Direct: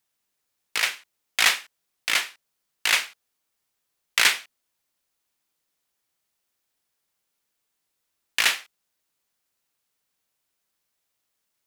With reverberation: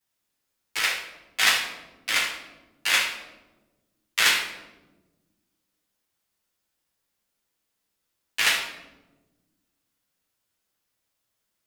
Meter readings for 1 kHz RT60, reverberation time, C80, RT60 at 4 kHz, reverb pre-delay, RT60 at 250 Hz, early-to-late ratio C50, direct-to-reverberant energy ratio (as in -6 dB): 0.90 s, 1.2 s, 7.5 dB, 0.65 s, 9 ms, 2.1 s, 5.0 dB, -10.5 dB